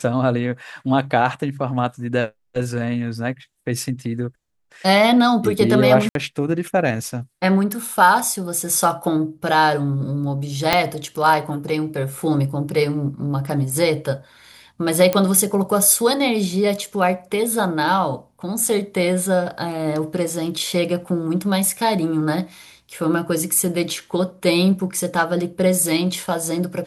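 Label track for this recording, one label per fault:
6.090000	6.150000	dropout 62 ms
10.730000	10.730000	pop 0 dBFS
15.130000	15.130000	pop -5 dBFS

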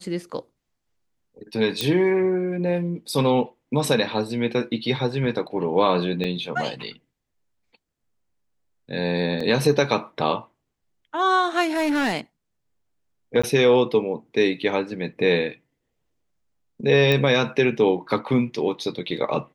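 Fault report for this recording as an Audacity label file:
1.810000	1.810000	pop -8 dBFS
6.240000	6.240000	dropout 4.2 ms
9.400000	9.400000	dropout 4.4 ms
11.690000	12.140000	clipped -19 dBFS
13.420000	13.440000	dropout 15 ms
17.120000	17.120000	pop -9 dBFS

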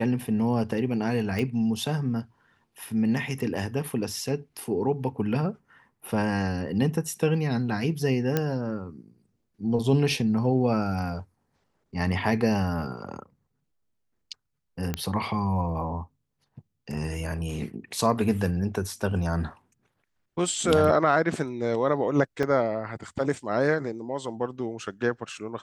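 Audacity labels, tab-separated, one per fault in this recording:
1.390000	1.390000	pop -17 dBFS
8.370000	8.370000	pop -10 dBFS
14.940000	14.940000	pop -13 dBFS
22.430000	22.430000	dropout 2 ms

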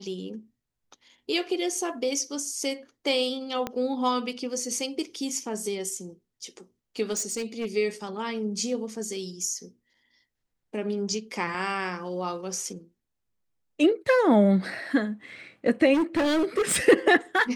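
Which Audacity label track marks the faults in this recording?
3.670000	3.670000	pop -15 dBFS
7.120000	7.660000	clipped -25.5 dBFS
15.930000	16.770000	clipped -20.5 dBFS

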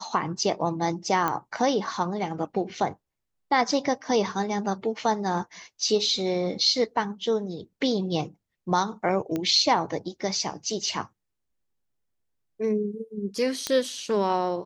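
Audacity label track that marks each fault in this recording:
1.280000	1.280000	pop -12 dBFS
9.360000	9.360000	pop -16 dBFS
13.670000	13.670000	pop -12 dBFS

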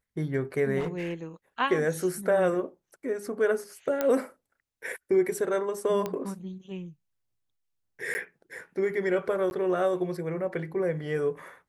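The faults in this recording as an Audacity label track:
0.790000	1.140000	clipped -27.5 dBFS
4.010000	4.010000	pop -13 dBFS
6.060000	6.060000	pop -17 dBFS
8.140000	8.150000	dropout 10 ms
9.500000	9.510000	dropout 11 ms

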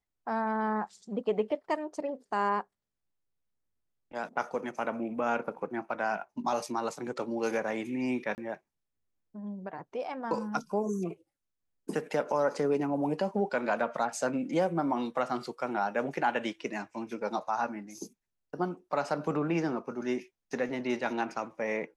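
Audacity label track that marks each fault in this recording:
8.350000	8.380000	dropout 29 ms

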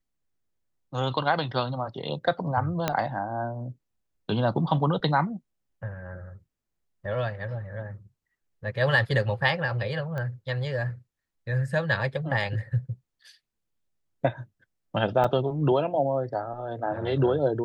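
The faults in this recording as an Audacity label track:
2.880000	2.880000	pop -9 dBFS
10.180000	10.180000	pop -22 dBFS
15.240000	15.240000	dropout 4.8 ms

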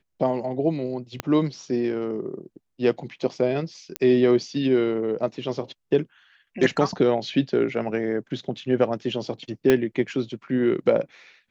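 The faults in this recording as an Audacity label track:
1.200000	1.200000	pop -11 dBFS
3.960000	3.960000	pop -10 dBFS
9.700000	9.700000	pop -6 dBFS

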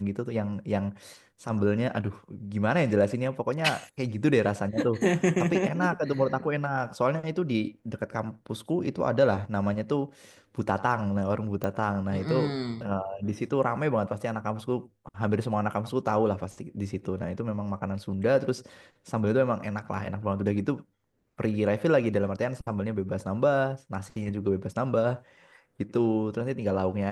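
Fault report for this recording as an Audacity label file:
11.640000	11.640000	pop -17 dBFS

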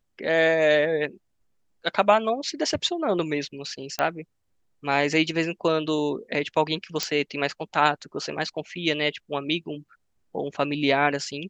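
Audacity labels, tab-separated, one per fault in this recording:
3.990000	3.990000	pop -10 dBFS
7.030000	7.030000	pop -9 dBFS

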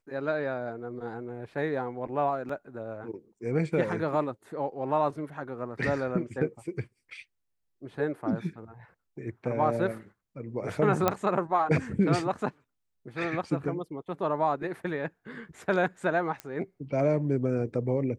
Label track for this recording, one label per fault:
2.490000	2.490000	dropout 3.8 ms
11.080000	11.080000	pop -9 dBFS
16.400000	16.400000	pop -20 dBFS

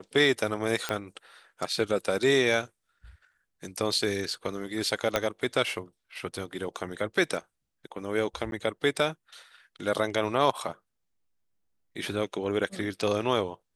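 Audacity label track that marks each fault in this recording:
0.890000	0.890000	pop -13 dBFS
5.160000	5.160000	pop -9 dBFS
8.510000	8.520000	dropout

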